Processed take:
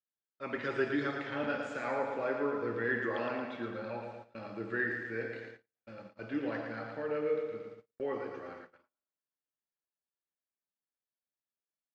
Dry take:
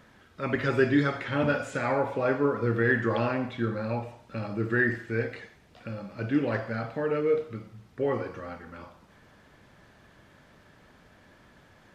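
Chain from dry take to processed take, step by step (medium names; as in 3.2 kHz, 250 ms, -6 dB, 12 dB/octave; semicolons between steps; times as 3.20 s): three-band isolator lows -13 dB, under 230 Hz, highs -20 dB, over 7.3 kHz; feedback delay 113 ms, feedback 58%, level -6 dB; gate -40 dBFS, range -42 dB; trim -8 dB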